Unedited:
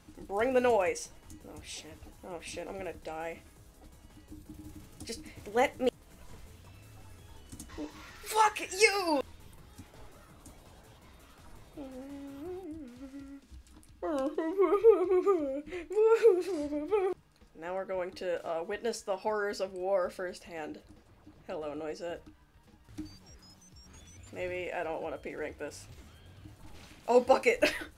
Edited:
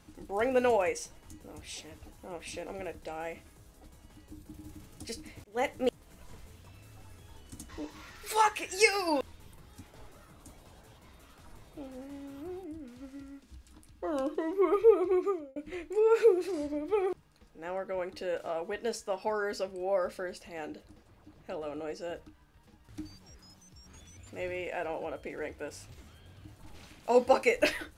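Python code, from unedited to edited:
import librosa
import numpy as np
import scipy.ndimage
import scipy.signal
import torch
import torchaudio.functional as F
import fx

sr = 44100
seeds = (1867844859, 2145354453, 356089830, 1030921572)

y = fx.edit(x, sr, fx.fade_in_span(start_s=5.44, length_s=0.4, curve='qsin'),
    fx.fade_out_span(start_s=15.13, length_s=0.43), tone=tone)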